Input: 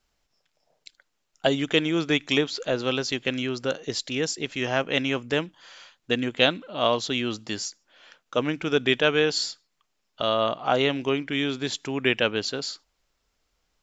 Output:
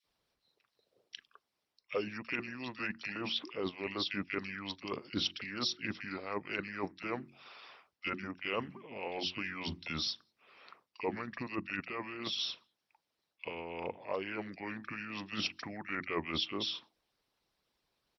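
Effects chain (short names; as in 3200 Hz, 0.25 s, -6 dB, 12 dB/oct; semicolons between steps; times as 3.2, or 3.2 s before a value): HPF 80 Hz; notches 60/120/180/240/300/360/420/480 Hz; varispeed -24%; reverse; compressor 6:1, threshold -28 dBFS, peak gain reduction 14.5 dB; reverse; harmonic-percussive split harmonic -15 dB; bands offset in time highs, lows 40 ms, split 1900 Hz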